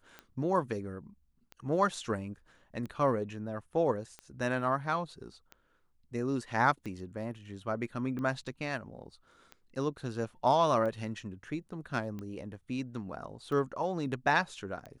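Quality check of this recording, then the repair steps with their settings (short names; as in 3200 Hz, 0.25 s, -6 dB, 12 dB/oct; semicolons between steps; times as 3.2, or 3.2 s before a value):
tick 45 rpm -29 dBFS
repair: de-click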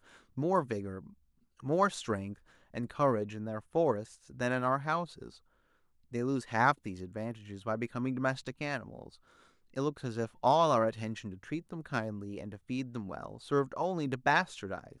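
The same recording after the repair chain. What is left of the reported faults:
none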